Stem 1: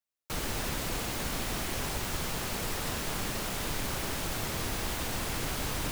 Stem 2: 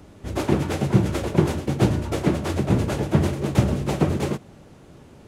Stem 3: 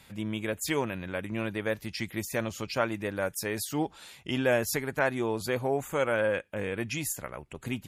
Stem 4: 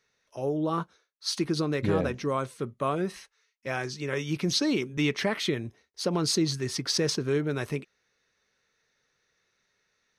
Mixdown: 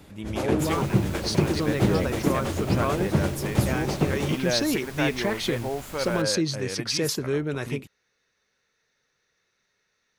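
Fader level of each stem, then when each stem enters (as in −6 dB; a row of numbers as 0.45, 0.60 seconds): −9.0, −4.0, −2.0, +0.5 decibels; 0.30, 0.00, 0.00, 0.00 seconds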